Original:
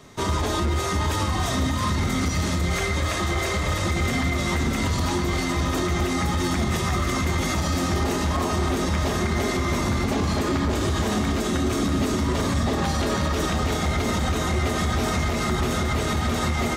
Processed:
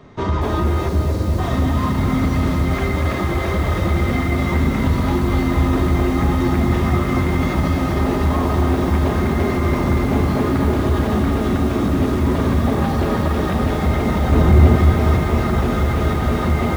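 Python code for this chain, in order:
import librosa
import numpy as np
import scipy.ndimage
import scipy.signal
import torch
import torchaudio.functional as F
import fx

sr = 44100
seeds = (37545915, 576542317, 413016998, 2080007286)

y = fx.spacing_loss(x, sr, db_at_10k=31)
y = fx.spec_erase(y, sr, start_s=0.89, length_s=0.5, low_hz=710.0, high_hz=3800.0)
y = fx.low_shelf(y, sr, hz=420.0, db=9.0, at=(14.32, 14.76))
y = fx.echo_crushed(y, sr, ms=237, feedback_pct=80, bits=7, wet_db=-7)
y = y * 10.0 ** (5.5 / 20.0)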